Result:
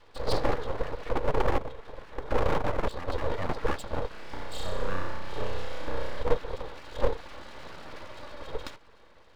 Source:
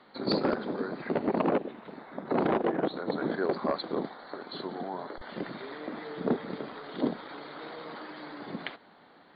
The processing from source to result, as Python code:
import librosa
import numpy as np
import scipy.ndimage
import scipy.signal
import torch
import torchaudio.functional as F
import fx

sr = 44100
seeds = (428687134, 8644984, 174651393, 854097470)

y = x + 0.86 * np.pad(x, (int(3.5 * sr / 1000.0), 0))[:len(x)]
y = fx.small_body(y, sr, hz=(220.0, 700.0, 3500.0), ring_ms=45, db=13)
y = np.abs(y)
y = fx.room_flutter(y, sr, wall_m=5.5, rt60_s=0.88, at=(4.08, 6.23))
y = y * librosa.db_to_amplitude(-4.5)